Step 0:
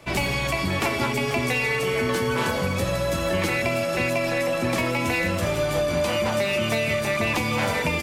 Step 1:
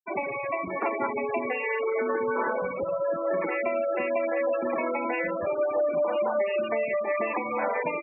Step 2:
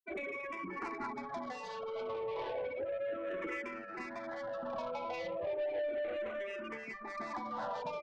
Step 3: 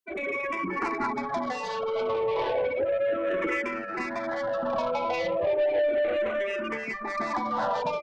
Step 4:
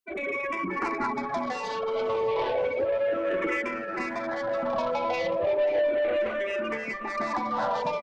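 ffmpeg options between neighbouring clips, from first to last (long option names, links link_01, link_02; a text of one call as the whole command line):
ffmpeg -i in.wav -filter_complex "[0:a]acrossover=split=290 2000:gain=0.126 1 0.2[link_01][link_02][link_03];[link_01][link_02][link_03]amix=inputs=3:normalize=0,afftfilt=real='re*gte(hypot(re,im),0.0708)':imag='im*gte(hypot(re,im),0.0708)':win_size=1024:overlap=0.75" out.wav
ffmpeg -i in.wav -filter_complex "[0:a]asoftclip=type=tanh:threshold=-26.5dB,asplit=2[link_01][link_02];[link_02]afreqshift=-0.33[link_03];[link_01][link_03]amix=inputs=2:normalize=1,volume=-5dB" out.wav
ffmpeg -i in.wav -af "dynaudnorm=framelen=150:gausssize=3:maxgain=6.5dB,volume=5dB" out.wav
ffmpeg -i in.wav -af "aecho=1:1:536|1072|1608|2144|2680:0.141|0.0791|0.0443|0.0248|0.0139" out.wav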